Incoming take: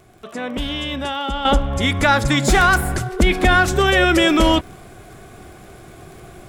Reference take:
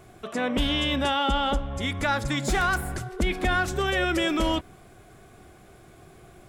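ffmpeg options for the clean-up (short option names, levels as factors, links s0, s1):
-af "adeclick=t=4,asetnsamples=n=441:p=0,asendcmd='1.45 volume volume -10dB',volume=1"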